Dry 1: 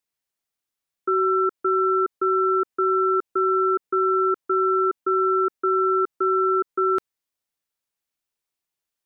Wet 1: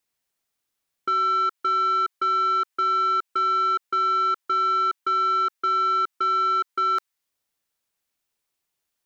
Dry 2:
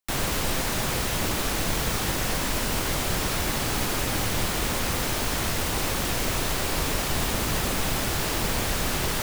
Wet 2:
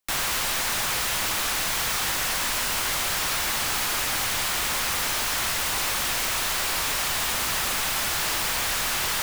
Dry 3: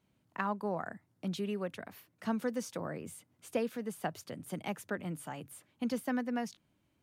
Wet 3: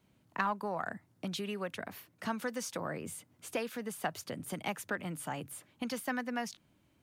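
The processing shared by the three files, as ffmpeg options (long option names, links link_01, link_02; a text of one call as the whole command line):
ffmpeg -i in.wav -filter_complex "[0:a]acrossover=split=780|1700[link_01][link_02][link_03];[link_01]acompressor=threshold=-42dB:ratio=5[link_04];[link_04][link_02][link_03]amix=inputs=3:normalize=0,asoftclip=type=tanh:threshold=-23dB,volume=5dB" out.wav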